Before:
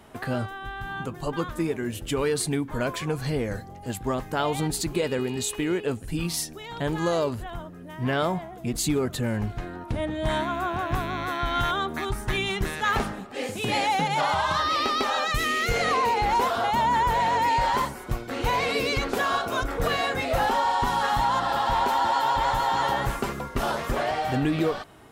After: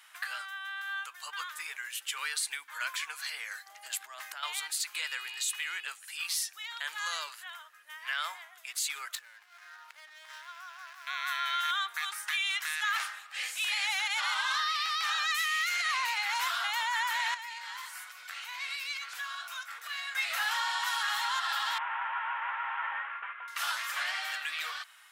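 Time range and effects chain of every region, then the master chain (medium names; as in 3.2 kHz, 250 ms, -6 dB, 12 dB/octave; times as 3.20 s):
3.66–4.43 s: compressor with a negative ratio -33 dBFS + small resonant body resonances 310/630 Hz, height 11 dB, ringing for 30 ms
9.15–11.07 s: median filter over 15 samples + compression 16:1, threshold -34 dBFS
17.34–20.15 s: doubling 19 ms -12 dB + compression, threshold -32 dBFS
21.78–23.48 s: CVSD coder 16 kbps + low-pass 1.7 kHz
whole clip: high-pass 1.4 kHz 24 dB/octave; peak limiter -23.5 dBFS; trim +2 dB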